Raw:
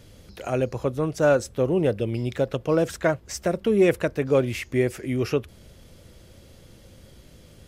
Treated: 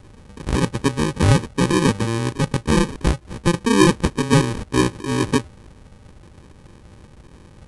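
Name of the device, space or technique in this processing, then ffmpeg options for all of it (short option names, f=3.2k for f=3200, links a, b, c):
crushed at another speed: -af "asetrate=88200,aresample=44100,acrusher=samples=32:mix=1:aa=0.000001,asetrate=22050,aresample=44100,volume=4.5dB"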